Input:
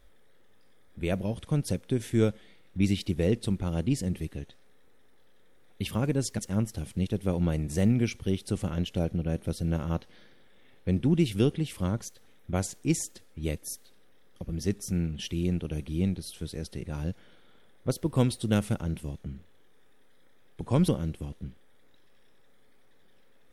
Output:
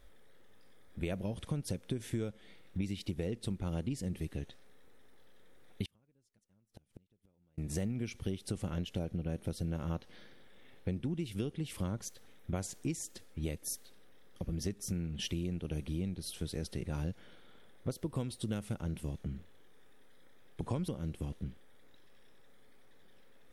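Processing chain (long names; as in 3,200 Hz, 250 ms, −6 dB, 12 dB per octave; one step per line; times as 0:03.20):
downward compressor 16 to 1, threshold −32 dBFS, peak gain reduction 15.5 dB
0:05.85–0:07.58: gate with flip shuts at −33 dBFS, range −36 dB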